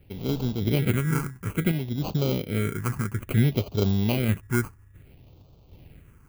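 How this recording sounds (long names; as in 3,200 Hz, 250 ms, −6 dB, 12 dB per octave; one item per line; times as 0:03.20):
aliases and images of a low sample rate 1,800 Hz, jitter 0%
phaser sweep stages 4, 0.59 Hz, lowest notch 590–1,800 Hz
sample-and-hold tremolo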